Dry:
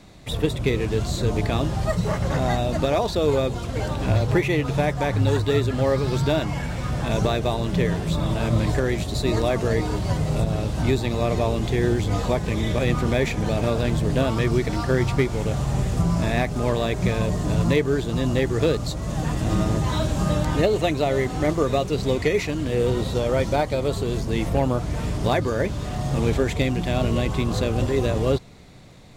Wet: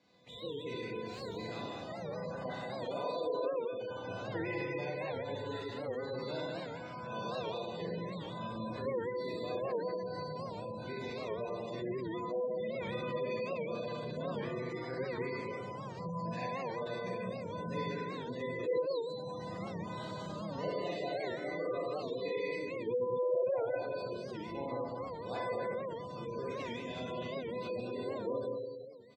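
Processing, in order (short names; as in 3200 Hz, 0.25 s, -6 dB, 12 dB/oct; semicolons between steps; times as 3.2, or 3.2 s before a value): tracing distortion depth 0.12 ms; Bessel high-pass 210 Hz, order 2; high shelf 5000 Hz +11.5 dB; resonator 500 Hz, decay 0.49 s, mix 90%; on a send: echo 0.198 s -5 dB; on the sum: Schroeder reverb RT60 1.4 s, combs from 32 ms, DRR -4.5 dB; spectral gate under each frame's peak -20 dB strong; air absorption 170 m; record warp 78 rpm, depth 160 cents; gain -3 dB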